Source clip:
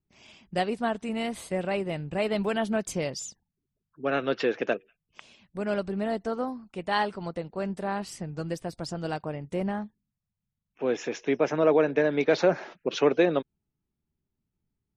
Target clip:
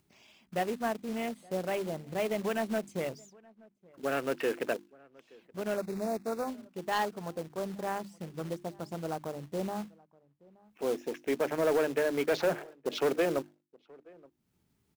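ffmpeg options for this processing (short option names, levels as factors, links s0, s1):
-filter_complex "[0:a]highpass=f=150:p=1,afwtdn=0.0141,bandreject=f=50:t=h:w=6,bandreject=f=100:t=h:w=6,bandreject=f=150:t=h:w=6,bandreject=f=200:t=h:w=6,bandreject=f=250:t=h:w=6,bandreject=f=300:t=h:w=6,bandreject=f=350:t=h:w=6,acompressor=mode=upward:threshold=0.00501:ratio=2.5,acrusher=bits=3:mode=log:mix=0:aa=0.000001,asoftclip=type=tanh:threshold=0.126,asettb=1/sr,asplit=3[s0][s1][s2];[s0]atrim=end=5.774[s3];[s1]atrim=start=5.77:end=6.48,asetpts=PTS-STARTPTS,afade=t=in:d=0.004:c=qsin,afade=t=out:st=0.706:d=0.004:c=qsin,asuperstop=centerf=3100:order=4:qfactor=2.9[s4];[s2]atrim=start=6.476[s5];[s3][s4]acrossfade=d=0.004:c1=hsin:c2=qsin[s6];[s6][s5]acrossfade=d=0.004:c1=qsin:c2=hsin,asplit=2[s7][s8];[s8]adelay=874.6,volume=0.0562,highshelf=f=4000:g=-19.7[s9];[s7][s9]amix=inputs=2:normalize=0,volume=0.75"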